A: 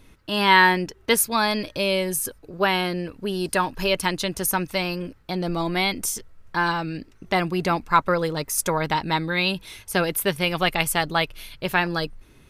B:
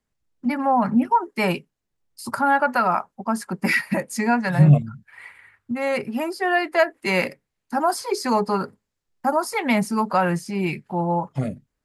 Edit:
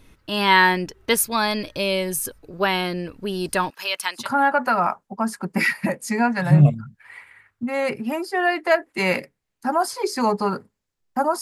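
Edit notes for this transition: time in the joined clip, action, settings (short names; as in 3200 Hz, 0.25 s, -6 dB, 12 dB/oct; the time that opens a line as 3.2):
A
3.7–4.32 HPF 980 Hz 12 dB/oct
4.22 switch to B from 2.3 s, crossfade 0.20 s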